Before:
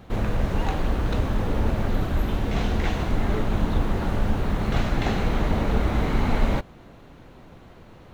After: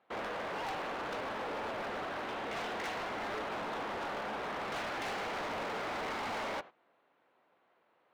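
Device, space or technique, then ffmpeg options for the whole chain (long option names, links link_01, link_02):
walkie-talkie: -af "highpass=600,lowpass=2700,asoftclip=type=hard:threshold=-35.5dB,agate=range=-17dB:threshold=-48dB:ratio=16:detection=peak"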